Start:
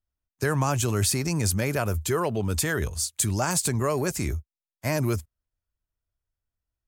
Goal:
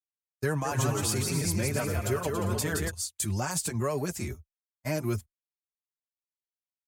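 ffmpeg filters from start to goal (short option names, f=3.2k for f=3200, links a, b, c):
-filter_complex "[0:a]agate=range=-33dB:threshold=-29dB:ratio=3:detection=peak,asplit=3[a][b][c];[a]afade=t=out:st=0.64:d=0.02[d];[b]aecho=1:1:170|280.5|352.3|399|429.4:0.631|0.398|0.251|0.158|0.1,afade=t=in:st=0.64:d=0.02,afade=t=out:st=2.89:d=0.02[e];[c]afade=t=in:st=2.89:d=0.02[f];[d][e][f]amix=inputs=3:normalize=0,asplit=2[g][h];[h]adelay=4.9,afreqshift=2.3[i];[g][i]amix=inputs=2:normalize=1,volume=-2.5dB"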